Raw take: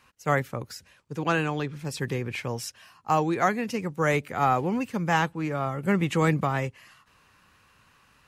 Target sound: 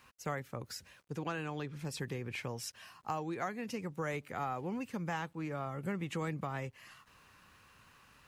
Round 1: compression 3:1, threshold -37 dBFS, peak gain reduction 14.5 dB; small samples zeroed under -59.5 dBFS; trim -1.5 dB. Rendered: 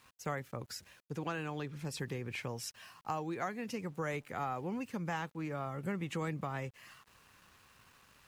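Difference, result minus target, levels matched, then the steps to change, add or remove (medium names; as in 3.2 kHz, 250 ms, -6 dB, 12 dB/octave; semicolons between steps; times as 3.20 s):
small samples zeroed: distortion +12 dB
change: small samples zeroed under -68.5 dBFS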